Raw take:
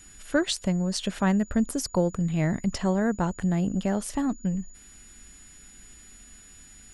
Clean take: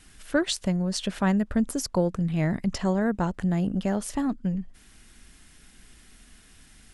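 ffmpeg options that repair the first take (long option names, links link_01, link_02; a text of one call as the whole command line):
ffmpeg -i in.wav -af "bandreject=frequency=6900:width=30" out.wav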